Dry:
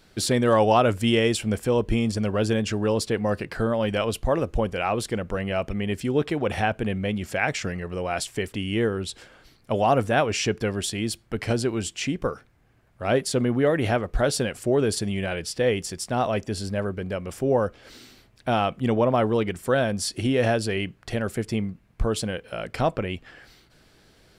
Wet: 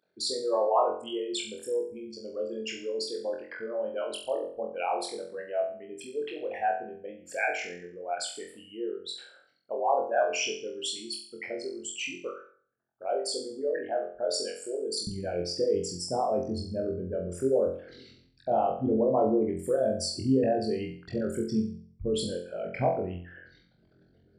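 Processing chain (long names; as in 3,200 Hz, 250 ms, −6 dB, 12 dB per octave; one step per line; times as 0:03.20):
spectral envelope exaggerated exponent 3
high-pass filter 620 Hz 12 dB per octave, from 0:15.07 99 Hz
flutter between parallel walls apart 3.9 metres, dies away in 0.49 s
level −5.5 dB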